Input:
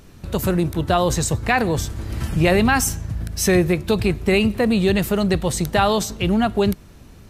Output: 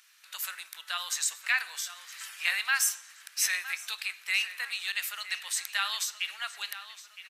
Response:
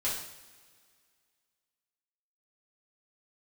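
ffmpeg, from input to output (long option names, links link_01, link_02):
-filter_complex "[0:a]highpass=frequency=1500:width=0.5412,highpass=frequency=1500:width=1.3066,asplit=2[link_01][link_02];[link_02]adelay=964,lowpass=frequency=4100:poles=1,volume=-12.5dB,asplit=2[link_03][link_04];[link_04]adelay=964,lowpass=frequency=4100:poles=1,volume=0.49,asplit=2[link_05][link_06];[link_06]adelay=964,lowpass=frequency=4100:poles=1,volume=0.49,asplit=2[link_07][link_08];[link_08]adelay=964,lowpass=frequency=4100:poles=1,volume=0.49,asplit=2[link_09][link_10];[link_10]adelay=964,lowpass=frequency=4100:poles=1,volume=0.49[link_11];[link_01][link_03][link_05][link_07][link_09][link_11]amix=inputs=6:normalize=0,asplit=2[link_12][link_13];[1:a]atrim=start_sample=2205,lowpass=8300,adelay=22[link_14];[link_13][link_14]afir=irnorm=-1:irlink=0,volume=-21.5dB[link_15];[link_12][link_15]amix=inputs=2:normalize=0,volume=-4dB"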